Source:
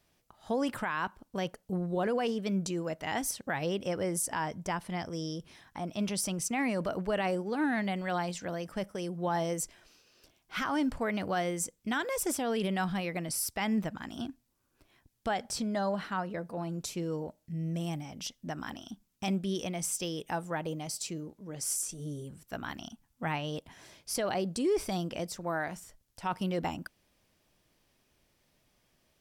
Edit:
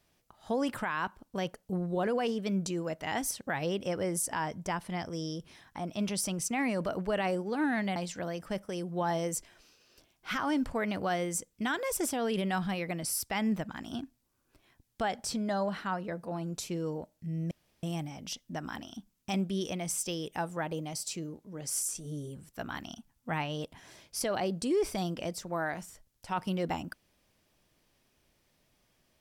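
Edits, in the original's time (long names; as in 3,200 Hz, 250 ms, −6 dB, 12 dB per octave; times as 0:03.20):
0:07.96–0:08.22: remove
0:17.77: splice in room tone 0.32 s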